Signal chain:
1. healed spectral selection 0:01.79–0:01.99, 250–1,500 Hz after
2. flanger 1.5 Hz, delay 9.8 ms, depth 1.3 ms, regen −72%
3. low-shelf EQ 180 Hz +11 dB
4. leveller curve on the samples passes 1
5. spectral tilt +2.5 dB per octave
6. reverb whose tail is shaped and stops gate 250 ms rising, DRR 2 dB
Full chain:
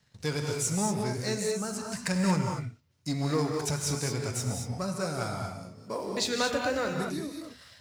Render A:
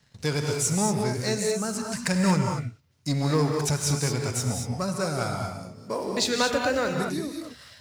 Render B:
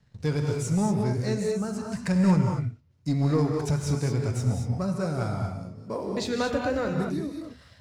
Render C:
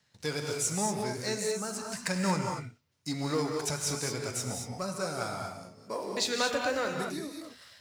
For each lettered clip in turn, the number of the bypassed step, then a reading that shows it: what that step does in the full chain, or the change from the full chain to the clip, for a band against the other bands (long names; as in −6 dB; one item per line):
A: 2, change in integrated loudness +4.5 LU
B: 5, 8 kHz band −8.5 dB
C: 3, 125 Hz band −6.0 dB